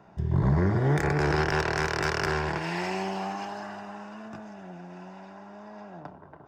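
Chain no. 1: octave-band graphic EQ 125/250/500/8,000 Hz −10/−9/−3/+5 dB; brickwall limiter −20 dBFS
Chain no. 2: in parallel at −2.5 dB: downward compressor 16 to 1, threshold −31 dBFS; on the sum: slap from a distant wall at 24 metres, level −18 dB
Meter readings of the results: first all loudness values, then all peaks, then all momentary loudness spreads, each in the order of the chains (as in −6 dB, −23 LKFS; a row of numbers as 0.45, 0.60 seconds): −33.0, −25.5 LKFS; −20.0, −11.0 dBFS; 18, 17 LU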